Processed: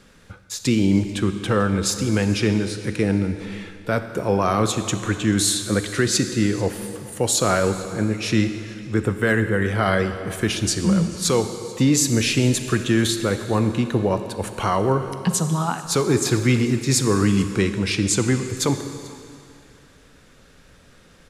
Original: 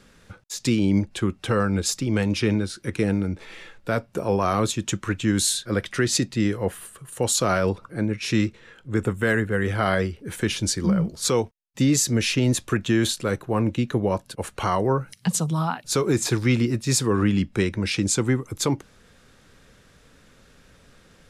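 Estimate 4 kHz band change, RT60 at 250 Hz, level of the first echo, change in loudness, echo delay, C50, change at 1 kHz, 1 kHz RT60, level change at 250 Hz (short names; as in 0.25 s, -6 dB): +2.5 dB, 2.4 s, -22.5 dB, +2.5 dB, 0.439 s, 9.0 dB, +2.5 dB, 2.4 s, +2.5 dB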